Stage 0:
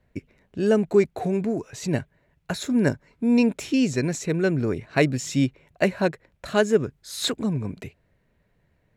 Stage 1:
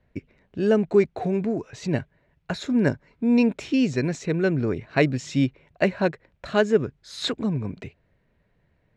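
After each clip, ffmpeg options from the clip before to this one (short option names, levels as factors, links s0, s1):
-af "lowpass=4800"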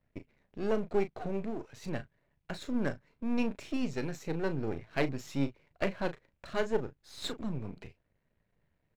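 -filter_complex "[0:a]aeval=exprs='if(lt(val(0),0),0.251*val(0),val(0))':c=same,asplit=2[s0][s1];[s1]adelay=36,volume=0.282[s2];[s0][s2]amix=inputs=2:normalize=0,volume=0.422"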